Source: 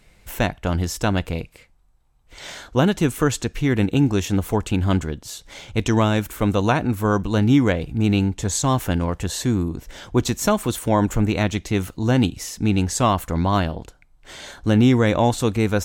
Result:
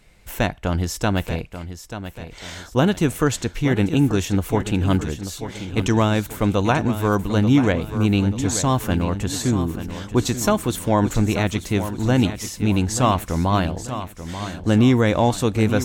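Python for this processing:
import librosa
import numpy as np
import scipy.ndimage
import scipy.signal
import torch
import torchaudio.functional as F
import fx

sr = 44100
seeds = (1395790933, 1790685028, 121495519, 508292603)

y = fx.echo_feedback(x, sr, ms=886, feedback_pct=43, wet_db=-11)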